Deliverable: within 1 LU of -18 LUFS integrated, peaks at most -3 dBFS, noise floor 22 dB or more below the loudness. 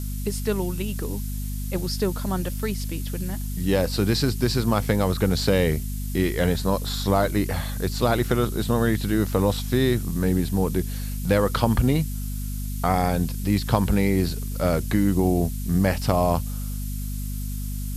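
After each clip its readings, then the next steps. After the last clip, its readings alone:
hum 50 Hz; harmonics up to 250 Hz; hum level -27 dBFS; noise floor -29 dBFS; noise floor target -47 dBFS; loudness -24.5 LUFS; peak -5.0 dBFS; loudness target -18.0 LUFS
-> de-hum 50 Hz, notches 5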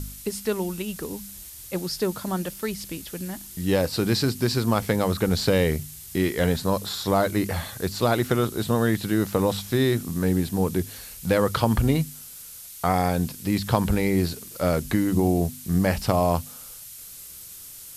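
hum none; noise floor -42 dBFS; noise floor target -47 dBFS
-> noise print and reduce 6 dB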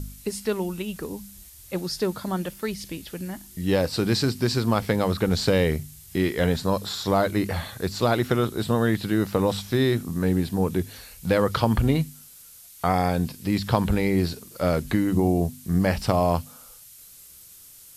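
noise floor -48 dBFS; loudness -25.0 LUFS; peak -5.5 dBFS; loudness target -18.0 LUFS
-> gain +7 dB; limiter -3 dBFS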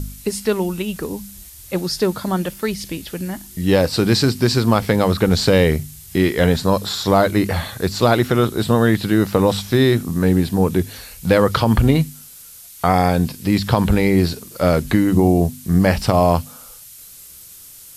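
loudness -18.0 LUFS; peak -3.0 dBFS; noise floor -41 dBFS

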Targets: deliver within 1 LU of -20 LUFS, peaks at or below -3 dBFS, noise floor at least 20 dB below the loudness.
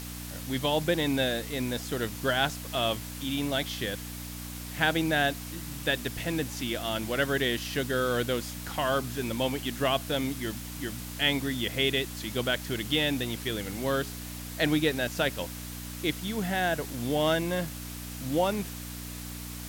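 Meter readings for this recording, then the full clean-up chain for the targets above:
hum 60 Hz; harmonics up to 300 Hz; hum level -38 dBFS; noise floor -40 dBFS; noise floor target -50 dBFS; loudness -29.5 LUFS; peak -9.0 dBFS; loudness target -20.0 LUFS
-> de-hum 60 Hz, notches 5; denoiser 10 dB, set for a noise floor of -40 dBFS; gain +9.5 dB; limiter -3 dBFS

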